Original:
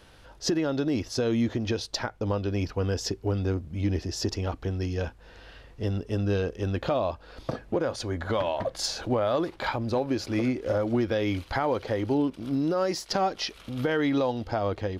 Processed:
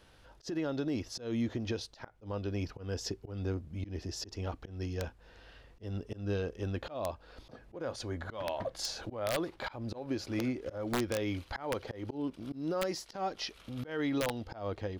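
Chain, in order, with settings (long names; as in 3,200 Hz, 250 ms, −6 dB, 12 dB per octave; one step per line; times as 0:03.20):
volume swells 169 ms
wrap-around overflow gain 17 dB
level −7 dB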